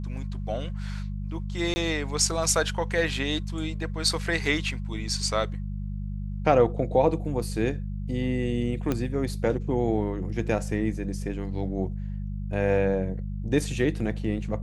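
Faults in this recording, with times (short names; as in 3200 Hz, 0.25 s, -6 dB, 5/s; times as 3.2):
hum 50 Hz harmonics 4 -32 dBFS
1.74–1.76 gap 20 ms
8.92 pop -13 dBFS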